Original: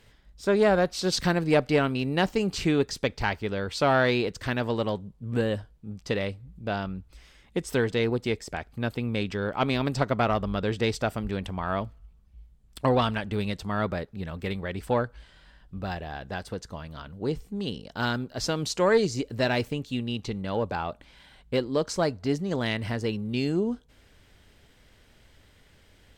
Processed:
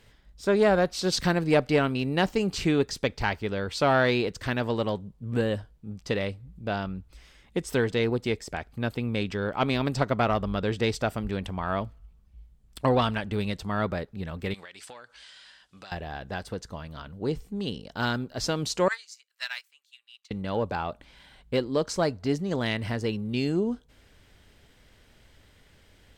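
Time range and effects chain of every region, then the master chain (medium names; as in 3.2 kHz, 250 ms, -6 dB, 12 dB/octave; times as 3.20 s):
14.54–15.92 s: frequency weighting ITU-R 468 + compression 10:1, threshold -41 dBFS
18.88–20.31 s: high-pass 1.3 kHz 24 dB/octave + treble shelf 6 kHz +5.5 dB + upward expansion 2.5:1, over -41 dBFS
whole clip: none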